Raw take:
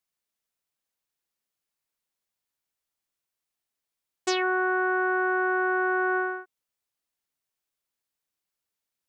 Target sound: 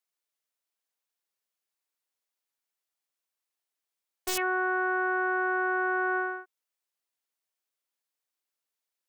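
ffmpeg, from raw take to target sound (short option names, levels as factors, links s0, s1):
-af "highpass=340,aeval=exprs='(mod(5.96*val(0)+1,2)-1)/5.96':c=same,volume=0.794"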